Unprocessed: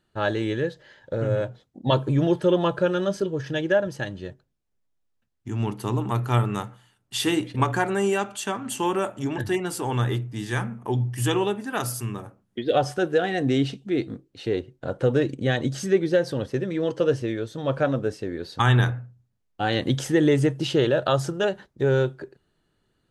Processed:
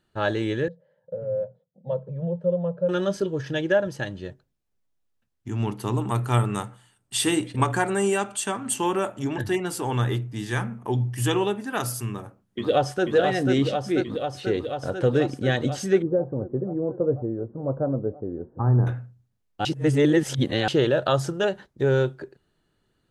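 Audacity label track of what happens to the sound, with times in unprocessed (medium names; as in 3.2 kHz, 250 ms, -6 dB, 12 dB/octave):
0.680000	2.890000	two resonant band-passes 300 Hz, apart 1.6 oct
5.940000	8.740000	peaking EQ 8.5 kHz +11 dB 0.27 oct
12.090000	13.050000	echo throw 490 ms, feedback 80%, level -4 dB
16.020000	18.870000	Gaussian low-pass sigma 10 samples
19.650000	20.680000	reverse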